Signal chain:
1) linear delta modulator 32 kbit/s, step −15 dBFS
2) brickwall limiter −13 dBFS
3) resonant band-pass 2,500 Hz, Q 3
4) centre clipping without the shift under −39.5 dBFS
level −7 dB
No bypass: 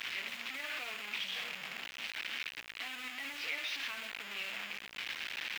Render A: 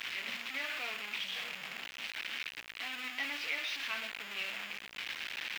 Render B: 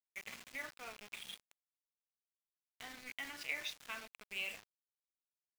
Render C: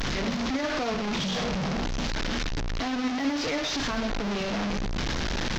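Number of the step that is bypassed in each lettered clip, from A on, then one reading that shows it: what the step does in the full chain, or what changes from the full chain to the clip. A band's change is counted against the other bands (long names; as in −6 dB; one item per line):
2, change in momentary loudness spread +2 LU
1, 4 kHz band −5.5 dB
3, 250 Hz band +17.0 dB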